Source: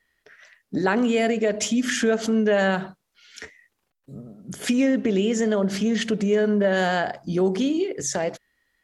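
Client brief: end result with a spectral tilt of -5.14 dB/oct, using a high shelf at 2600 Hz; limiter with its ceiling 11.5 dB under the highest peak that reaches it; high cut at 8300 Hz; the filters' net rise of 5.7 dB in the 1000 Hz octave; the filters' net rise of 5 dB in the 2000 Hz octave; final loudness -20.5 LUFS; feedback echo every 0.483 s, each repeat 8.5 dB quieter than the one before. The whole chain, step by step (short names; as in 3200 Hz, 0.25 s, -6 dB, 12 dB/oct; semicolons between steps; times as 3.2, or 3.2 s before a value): LPF 8300 Hz; bell 1000 Hz +8 dB; bell 2000 Hz +5.5 dB; high shelf 2600 Hz -5.5 dB; limiter -15.5 dBFS; feedback echo 0.483 s, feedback 38%, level -8.5 dB; gain +4 dB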